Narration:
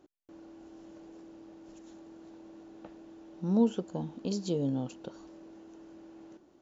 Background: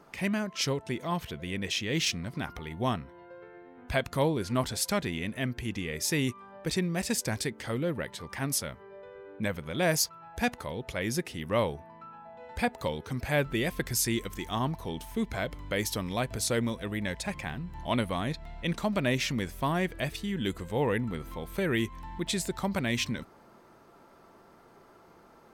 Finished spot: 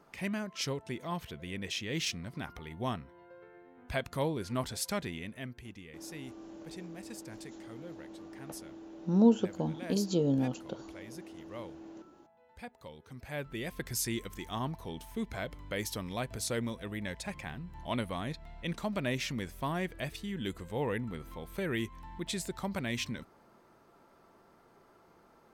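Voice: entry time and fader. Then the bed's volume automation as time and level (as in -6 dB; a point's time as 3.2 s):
5.65 s, +2.5 dB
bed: 5.04 s -5.5 dB
6.01 s -17.5 dB
12.82 s -17.5 dB
13.95 s -5.5 dB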